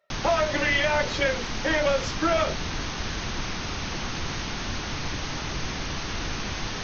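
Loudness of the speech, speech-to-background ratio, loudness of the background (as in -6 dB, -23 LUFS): -25.0 LUFS, 6.0 dB, -31.0 LUFS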